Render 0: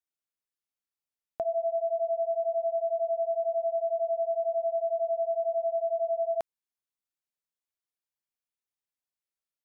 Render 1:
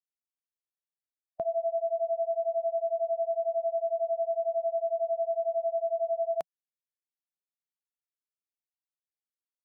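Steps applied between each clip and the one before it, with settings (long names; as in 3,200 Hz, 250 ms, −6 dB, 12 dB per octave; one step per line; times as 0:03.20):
spectral dynamics exaggerated over time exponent 1.5
parametric band 170 Hz +6.5 dB 0.66 octaves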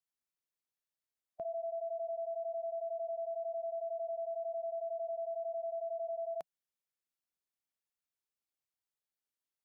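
brickwall limiter −34 dBFS, peak gain reduction 11.5 dB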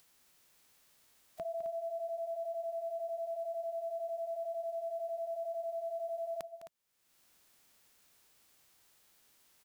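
spectral envelope flattened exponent 0.6
upward compression, threshold −47 dBFS
on a send: loudspeakers that aren't time-aligned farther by 71 metres −12 dB, 90 metres −11 dB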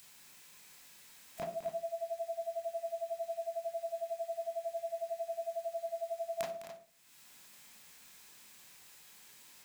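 convolution reverb RT60 0.40 s, pre-delay 22 ms, DRR −3.5 dB
level +7.5 dB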